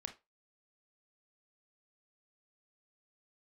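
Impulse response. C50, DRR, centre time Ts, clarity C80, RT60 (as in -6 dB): 13.0 dB, 5.5 dB, 9 ms, 22.0 dB, 0.25 s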